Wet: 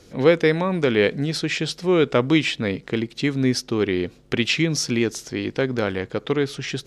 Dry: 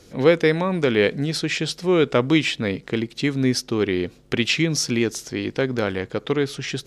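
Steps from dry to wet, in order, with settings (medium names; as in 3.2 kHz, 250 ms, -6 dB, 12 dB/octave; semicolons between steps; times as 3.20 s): treble shelf 8.6 kHz -4.5 dB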